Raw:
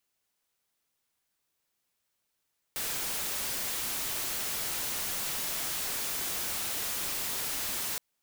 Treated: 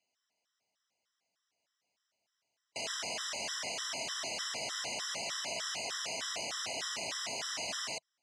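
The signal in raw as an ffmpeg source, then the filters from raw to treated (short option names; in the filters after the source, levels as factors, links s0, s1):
-f lavfi -i "anoisesrc=c=white:a=0.0366:d=5.22:r=44100:seed=1"
-af "highpass=130,equalizer=f=160:t=q:w=4:g=-3,equalizer=f=350:t=q:w=4:g=-4,equalizer=f=660:t=q:w=4:g=10,equalizer=f=1900:t=q:w=4:g=3,equalizer=f=2900:t=q:w=4:g=4,equalizer=f=5400:t=q:w=4:g=6,lowpass=f=7300:w=0.5412,lowpass=f=7300:w=1.3066,afftfilt=real='re*gt(sin(2*PI*3.3*pts/sr)*(1-2*mod(floor(b*sr/1024/1000),2)),0)':imag='im*gt(sin(2*PI*3.3*pts/sr)*(1-2*mod(floor(b*sr/1024/1000),2)),0)':win_size=1024:overlap=0.75"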